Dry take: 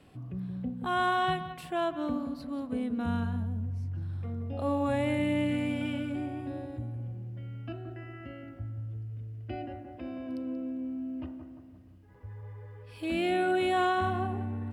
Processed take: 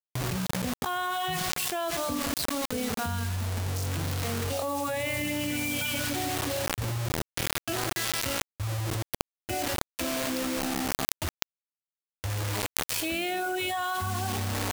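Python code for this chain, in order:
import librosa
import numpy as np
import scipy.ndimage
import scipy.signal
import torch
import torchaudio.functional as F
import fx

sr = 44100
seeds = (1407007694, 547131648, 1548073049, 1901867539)

p1 = scipy.signal.sosfilt(scipy.signal.butter(2, 51.0, 'highpass', fs=sr, output='sos'), x)
p2 = fx.peak_eq(p1, sr, hz=250.0, db=-8.5, octaves=1.1)
p3 = fx.hum_notches(p2, sr, base_hz=60, count=5)
p4 = p3 + fx.echo_feedback(p3, sr, ms=68, feedback_pct=52, wet_db=-21.5, dry=0)
p5 = fx.dereverb_blind(p4, sr, rt60_s=2.0)
p6 = fx.rev_schroeder(p5, sr, rt60_s=1.8, comb_ms=30, drr_db=18.5)
p7 = fx.quant_dither(p6, sr, seeds[0], bits=8, dither='none')
p8 = fx.high_shelf(p7, sr, hz=3600.0, db=8.5)
p9 = fx.env_flatten(p8, sr, amount_pct=100)
y = p9 * 10.0 ** (-3.0 / 20.0)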